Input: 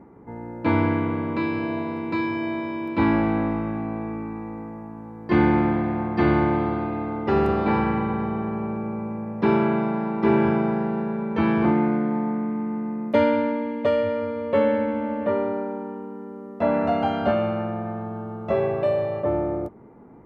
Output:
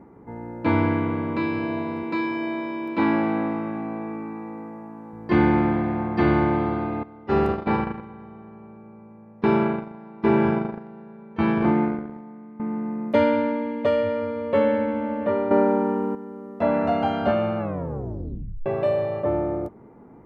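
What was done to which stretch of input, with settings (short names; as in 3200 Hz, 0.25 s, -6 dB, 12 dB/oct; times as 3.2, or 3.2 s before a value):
2.03–5.13 HPF 190 Hz
7.03–12.6 gate -22 dBFS, range -16 dB
15.51–16.15 gain +10 dB
17.58 tape stop 1.08 s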